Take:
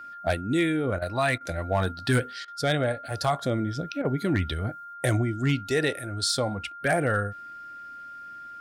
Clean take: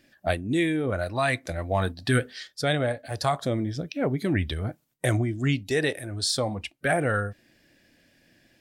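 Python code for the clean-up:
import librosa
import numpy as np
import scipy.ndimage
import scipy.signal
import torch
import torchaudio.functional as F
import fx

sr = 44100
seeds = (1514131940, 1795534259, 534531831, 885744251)

y = fx.fix_declip(x, sr, threshold_db=-15.0)
y = fx.notch(y, sr, hz=1400.0, q=30.0)
y = fx.fix_interpolate(y, sr, at_s=(0.99, 1.38, 2.45, 4.02), length_ms=27.0)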